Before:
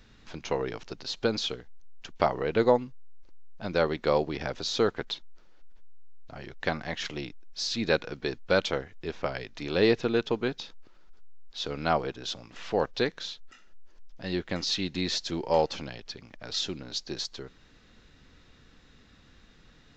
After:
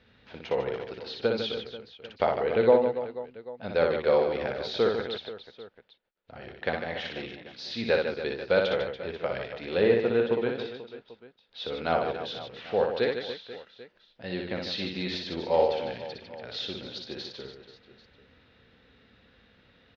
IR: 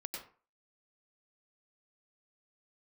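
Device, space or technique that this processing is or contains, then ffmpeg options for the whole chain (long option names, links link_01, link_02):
guitar cabinet: -filter_complex "[0:a]asettb=1/sr,asplit=3[link_01][link_02][link_03];[link_01]atrim=end=9.814[link_04];[link_02]atrim=start=9.81:end=10.49,asetpts=PTS-STARTPTS,afade=type=in:duration=0.004:curve=qsin,afade=type=out:start_time=0.676:duration=0.004:curve=qsin,acrossover=split=2600[link_05][link_06];[link_06]acompressor=threshold=-44dB:ratio=4:attack=1:release=60[link_07];[link_05][link_07]amix=inputs=2:normalize=0[link_08];[link_03]atrim=start=10.486[link_09];[link_04][link_08]acrossfade=duration=0.004:curve1=hsin:curve2=qsin[link_10];[link_10][link_09]acrossfade=duration=0.004:curve1=qsin:curve2=hsin,highpass=82,equalizer=frequency=150:width_type=q:width=4:gain=-7,equalizer=frequency=310:width_type=q:width=4:gain=-6,equalizer=frequency=500:width_type=q:width=4:gain=5,equalizer=frequency=1100:width_type=q:width=4:gain=-5,lowpass=frequency=3900:width=0.5412,lowpass=frequency=3900:width=1.3066,aecho=1:1:60|150|285|487.5|791.2:0.631|0.398|0.251|0.158|0.1,volume=-1.5dB"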